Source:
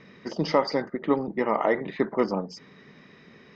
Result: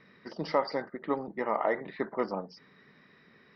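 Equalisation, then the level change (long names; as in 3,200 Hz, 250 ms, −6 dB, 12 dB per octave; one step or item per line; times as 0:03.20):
Chebyshev low-pass with heavy ripple 5,800 Hz, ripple 6 dB
dynamic equaliser 670 Hz, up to +5 dB, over −40 dBFS, Q 1.3
−4.0 dB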